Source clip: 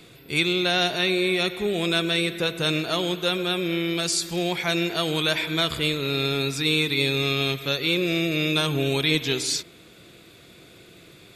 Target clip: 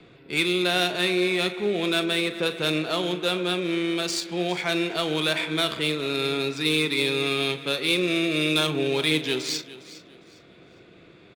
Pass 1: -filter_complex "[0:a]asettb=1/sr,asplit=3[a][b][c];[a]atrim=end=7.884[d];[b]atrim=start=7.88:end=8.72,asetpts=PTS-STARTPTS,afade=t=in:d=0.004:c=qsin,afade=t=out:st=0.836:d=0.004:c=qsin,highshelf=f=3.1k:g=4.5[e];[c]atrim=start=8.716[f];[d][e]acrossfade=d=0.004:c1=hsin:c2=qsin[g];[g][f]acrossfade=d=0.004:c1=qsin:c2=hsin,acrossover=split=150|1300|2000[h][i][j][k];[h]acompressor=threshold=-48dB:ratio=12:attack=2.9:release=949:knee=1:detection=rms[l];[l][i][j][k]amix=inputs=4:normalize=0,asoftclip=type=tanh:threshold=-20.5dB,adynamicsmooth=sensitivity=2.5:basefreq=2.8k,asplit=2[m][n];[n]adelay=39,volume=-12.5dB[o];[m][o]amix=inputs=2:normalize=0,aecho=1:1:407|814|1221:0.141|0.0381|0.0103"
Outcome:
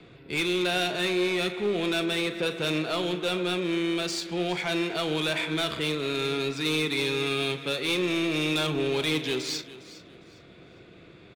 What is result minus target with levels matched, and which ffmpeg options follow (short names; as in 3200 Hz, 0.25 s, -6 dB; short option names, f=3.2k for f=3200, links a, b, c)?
soft clip: distortion +14 dB; compressor: peak gain reduction -9 dB
-filter_complex "[0:a]asettb=1/sr,asplit=3[a][b][c];[a]atrim=end=7.884[d];[b]atrim=start=7.88:end=8.72,asetpts=PTS-STARTPTS,afade=t=in:d=0.004:c=qsin,afade=t=out:st=0.836:d=0.004:c=qsin,highshelf=f=3.1k:g=4.5[e];[c]atrim=start=8.716[f];[d][e]acrossfade=d=0.004:c1=hsin:c2=qsin[g];[g][f]acrossfade=d=0.004:c1=qsin:c2=hsin,acrossover=split=150|1300|2000[h][i][j][k];[h]acompressor=threshold=-58dB:ratio=12:attack=2.9:release=949:knee=1:detection=rms[l];[l][i][j][k]amix=inputs=4:normalize=0,asoftclip=type=tanh:threshold=-9.5dB,adynamicsmooth=sensitivity=2.5:basefreq=2.8k,asplit=2[m][n];[n]adelay=39,volume=-12.5dB[o];[m][o]amix=inputs=2:normalize=0,aecho=1:1:407|814|1221:0.141|0.0381|0.0103"